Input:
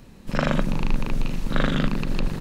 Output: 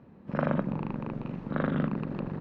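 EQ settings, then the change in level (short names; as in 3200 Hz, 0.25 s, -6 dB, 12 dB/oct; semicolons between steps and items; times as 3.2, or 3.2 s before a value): HPF 110 Hz 12 dB/oct; LPF 1300 Hz 12 dB/oct; -3.5 dB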